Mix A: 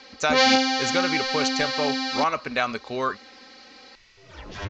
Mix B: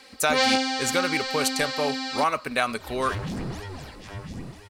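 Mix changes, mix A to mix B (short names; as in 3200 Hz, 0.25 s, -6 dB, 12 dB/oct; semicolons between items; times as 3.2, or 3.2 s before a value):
first sound -3.5 dB; second sound: entry -1.50 s; master: remove steep low-pass 6800 Hz 72 dB/oct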